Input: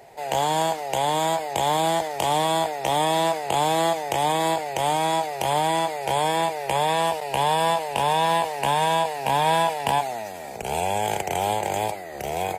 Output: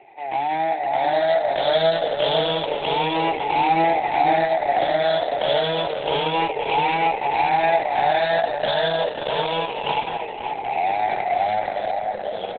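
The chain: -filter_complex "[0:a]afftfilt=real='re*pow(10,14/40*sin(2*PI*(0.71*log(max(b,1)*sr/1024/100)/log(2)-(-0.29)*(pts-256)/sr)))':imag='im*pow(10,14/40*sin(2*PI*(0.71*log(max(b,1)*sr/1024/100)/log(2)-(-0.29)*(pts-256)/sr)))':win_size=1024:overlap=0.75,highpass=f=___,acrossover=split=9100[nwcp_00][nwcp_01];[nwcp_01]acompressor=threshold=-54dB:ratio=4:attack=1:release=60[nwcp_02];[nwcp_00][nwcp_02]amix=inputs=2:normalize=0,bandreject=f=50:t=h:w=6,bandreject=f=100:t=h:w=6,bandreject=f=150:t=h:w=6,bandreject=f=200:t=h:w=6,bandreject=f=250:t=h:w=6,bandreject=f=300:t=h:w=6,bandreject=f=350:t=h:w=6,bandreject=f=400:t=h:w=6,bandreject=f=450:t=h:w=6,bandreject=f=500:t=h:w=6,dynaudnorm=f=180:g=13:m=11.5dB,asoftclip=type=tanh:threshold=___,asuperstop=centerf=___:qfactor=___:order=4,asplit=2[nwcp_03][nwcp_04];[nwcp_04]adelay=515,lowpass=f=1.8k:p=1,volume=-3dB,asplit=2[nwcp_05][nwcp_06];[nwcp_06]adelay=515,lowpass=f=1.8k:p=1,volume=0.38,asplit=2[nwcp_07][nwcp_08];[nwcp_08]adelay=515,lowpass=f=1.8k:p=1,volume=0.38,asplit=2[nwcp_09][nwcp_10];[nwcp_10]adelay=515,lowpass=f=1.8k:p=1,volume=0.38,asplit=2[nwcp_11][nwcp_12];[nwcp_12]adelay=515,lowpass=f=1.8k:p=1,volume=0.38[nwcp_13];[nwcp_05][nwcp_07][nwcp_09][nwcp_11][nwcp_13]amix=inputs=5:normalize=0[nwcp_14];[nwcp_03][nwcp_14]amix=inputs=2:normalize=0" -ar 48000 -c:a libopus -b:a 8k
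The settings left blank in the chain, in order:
290, -13.5dB, 1100, 2.7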